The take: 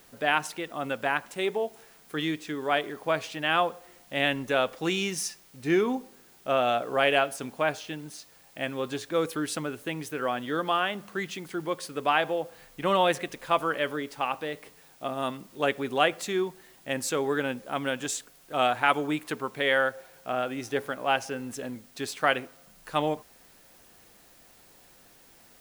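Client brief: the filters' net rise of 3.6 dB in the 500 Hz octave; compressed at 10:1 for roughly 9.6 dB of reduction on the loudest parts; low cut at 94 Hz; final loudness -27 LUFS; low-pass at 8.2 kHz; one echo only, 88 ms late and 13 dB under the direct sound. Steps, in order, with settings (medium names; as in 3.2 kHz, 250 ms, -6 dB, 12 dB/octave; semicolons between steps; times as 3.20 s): high-pass 94 Hz; low-pass 8.2 kHz; peaking EQ 500 Hz +4.5 dB; compression 10:1, threshold -26 dBFS; delay 88 ms -13 dB; trim +5.5 dB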